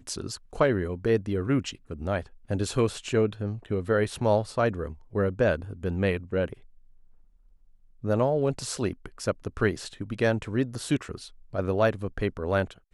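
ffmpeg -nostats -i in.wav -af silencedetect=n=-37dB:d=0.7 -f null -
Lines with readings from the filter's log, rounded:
silence_start: 6.53
silence_end: 8.04 | silence_duration: 1.50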